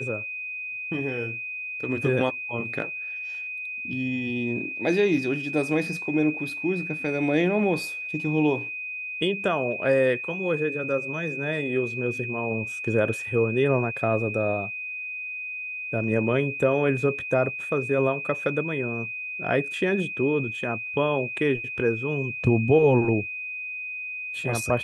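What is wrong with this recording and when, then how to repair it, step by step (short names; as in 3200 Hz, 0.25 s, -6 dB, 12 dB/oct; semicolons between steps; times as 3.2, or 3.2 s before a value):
tone 2500 Hz -31 dBFS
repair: notch 2500 Hz, Q 30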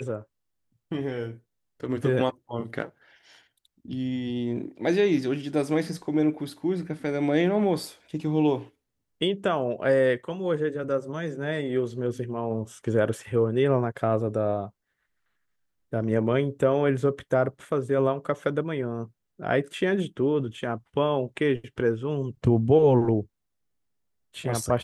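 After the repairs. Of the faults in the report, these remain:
none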